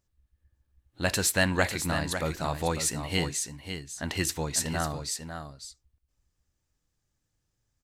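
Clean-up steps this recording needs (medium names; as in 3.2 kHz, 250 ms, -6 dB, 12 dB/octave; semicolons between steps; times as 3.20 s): inverse comb 549 ms -8.5 dB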